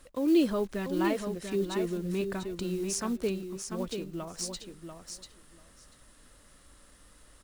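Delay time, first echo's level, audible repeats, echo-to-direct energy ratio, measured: 691 ms, −7.0 dB, 2, −7.0 dB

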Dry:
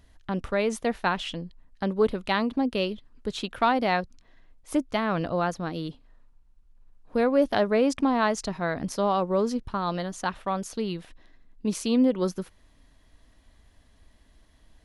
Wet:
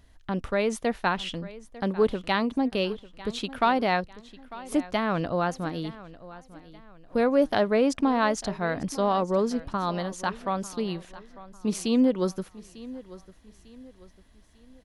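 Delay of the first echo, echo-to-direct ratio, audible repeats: 898 ms, −17.5 dB, 3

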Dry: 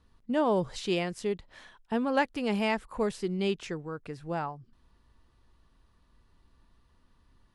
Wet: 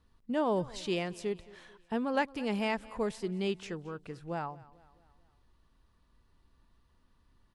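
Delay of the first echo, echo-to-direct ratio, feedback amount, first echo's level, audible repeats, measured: 220 ms, −20.0 dB, 50%, −21.0 dB, 3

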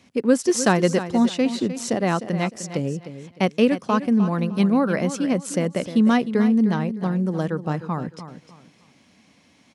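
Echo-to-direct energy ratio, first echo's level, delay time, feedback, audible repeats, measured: −11.5 dB, −12.0 dB, 305 ms, 28%, 3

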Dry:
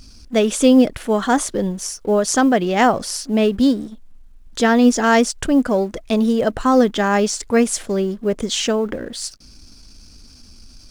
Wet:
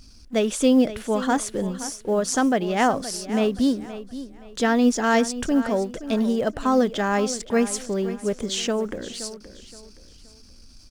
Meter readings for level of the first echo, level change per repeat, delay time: −14.0 dB, −10.0 dB, 522 ms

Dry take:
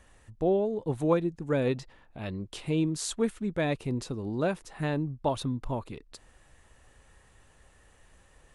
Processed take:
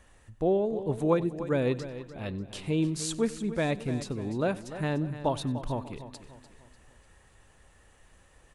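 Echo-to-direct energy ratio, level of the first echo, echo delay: −11.5 dB, −21.0 dB, 94 ms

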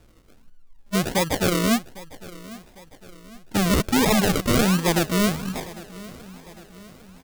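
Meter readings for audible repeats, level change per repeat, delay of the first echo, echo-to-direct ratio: 3, −6.0 dB, 803 ms, −18.0 dB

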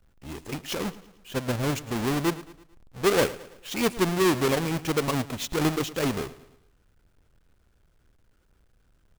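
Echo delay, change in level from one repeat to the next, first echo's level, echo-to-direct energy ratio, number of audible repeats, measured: 111 ms, −6.5 dB, −17.5 dB, −16.5 dB, 3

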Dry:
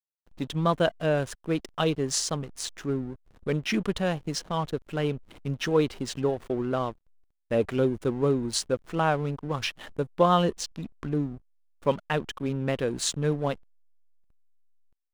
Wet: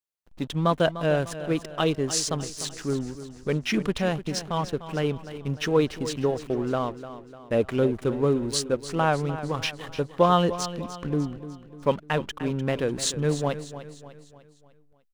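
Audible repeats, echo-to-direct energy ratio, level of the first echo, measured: 4, −12.0 dB, −13.0 dB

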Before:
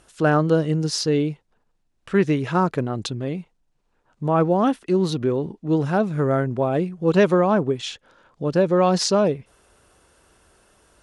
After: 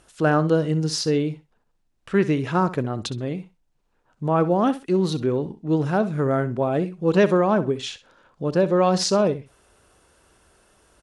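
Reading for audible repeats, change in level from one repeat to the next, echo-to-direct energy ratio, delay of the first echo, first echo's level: 2, −15.5 dB, −15.0 dB, 64 ms, −15.0 dB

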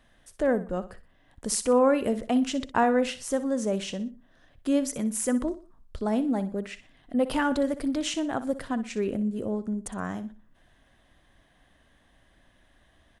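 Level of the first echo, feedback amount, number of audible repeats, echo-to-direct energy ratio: −14.0 dB, 34%, 3, −13.5 dB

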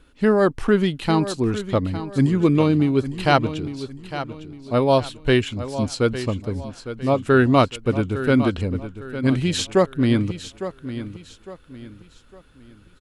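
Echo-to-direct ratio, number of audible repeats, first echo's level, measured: −11.5 dB, 3, −12.0 dB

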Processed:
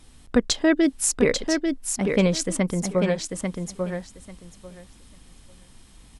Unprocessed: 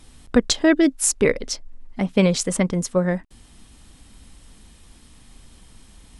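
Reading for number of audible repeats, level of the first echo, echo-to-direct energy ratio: 2, −5.0 dB, −5.0 dB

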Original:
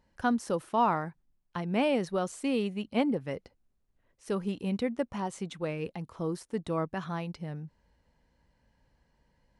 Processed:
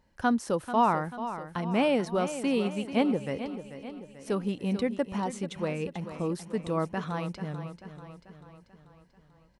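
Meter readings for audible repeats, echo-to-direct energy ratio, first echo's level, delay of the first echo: 5, −10.0 dB, −11.5 dB, 439 ms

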